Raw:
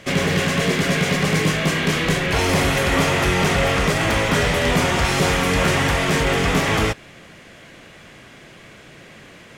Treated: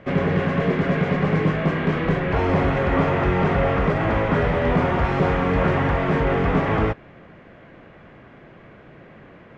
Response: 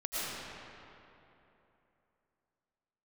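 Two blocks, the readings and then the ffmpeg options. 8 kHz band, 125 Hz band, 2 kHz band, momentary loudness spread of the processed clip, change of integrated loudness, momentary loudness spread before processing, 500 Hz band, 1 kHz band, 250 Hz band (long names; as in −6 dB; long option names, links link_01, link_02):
below −25 dB, 0.0 dB, −6.5 dB, 2 LU, −2.5 dB, 2 LU, 0.0 dB, −1.0 dB, 0.0 dB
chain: -af "lowpass=1400"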